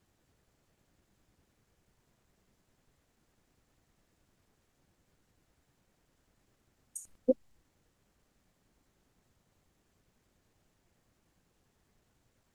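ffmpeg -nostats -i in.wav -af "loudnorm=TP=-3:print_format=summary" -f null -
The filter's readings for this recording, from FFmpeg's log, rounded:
Input Integrated:    -34.1 LUFS
Input True Peak:     -13.8 dBTP
Input LRA:            14.3 LU
Input Threshold:     -46.0 LUFS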